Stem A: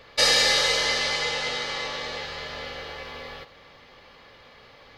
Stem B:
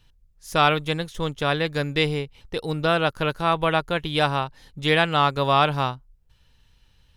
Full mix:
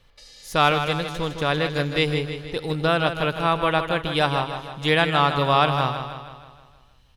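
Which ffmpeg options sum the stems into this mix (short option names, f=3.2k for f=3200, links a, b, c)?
-filter_complex "[0:a]acrossover=split=310|3000[a][b][c];[b]acompressor=threshold=-33dB:ratio=6[d];[a][d][c]amix=inputs=3:normalize=0,alimiter=limit=-22dB:level=0:latency=1:release=448,volume=-16dB[e];[1:a]volume=0dB,asplit=2[f][g];[g]volume=-8.5dB,aecho=0:1:158|316|474|632|790|948|1106|1264:1|0.53|0.281|0.149|0.0789|0.0418|0.0222|0.0117[h];[e][f][h]amix=inputs=3:normalize=0"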